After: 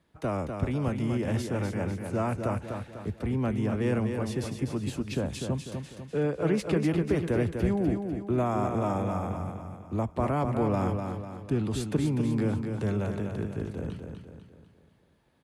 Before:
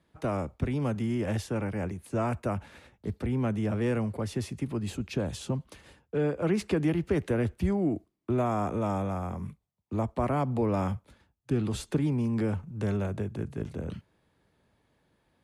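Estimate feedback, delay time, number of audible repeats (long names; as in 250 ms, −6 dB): 46%, 248 ms, 5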